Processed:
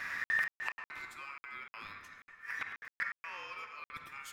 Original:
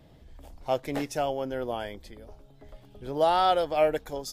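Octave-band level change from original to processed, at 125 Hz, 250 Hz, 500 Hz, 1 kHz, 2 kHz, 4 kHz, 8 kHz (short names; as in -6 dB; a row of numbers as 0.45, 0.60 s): -23.0, -28.0, -33.5, -18.5, +6.0, -14.5, -11.0 dB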